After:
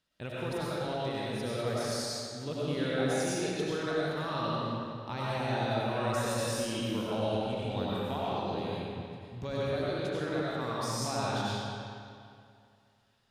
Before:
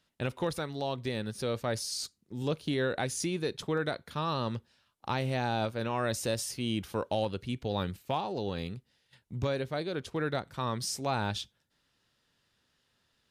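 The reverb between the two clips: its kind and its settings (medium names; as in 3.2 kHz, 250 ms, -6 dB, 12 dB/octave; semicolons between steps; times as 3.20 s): algorithmic reverb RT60 2.4 s, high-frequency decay 0.8×, pre-delay 55 ms, DRR -7.5 dB; trim -7.5 dB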